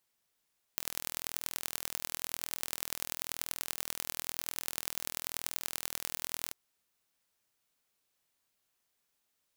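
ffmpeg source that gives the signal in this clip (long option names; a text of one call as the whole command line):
ffmpeg -f lavfi -i "aevalsrc='0.531*eq(mod(n,1076),0)*(0.5+0.5*eq(mod(n,4304),0))':duration=5.75:sample_rate=44100" out.wav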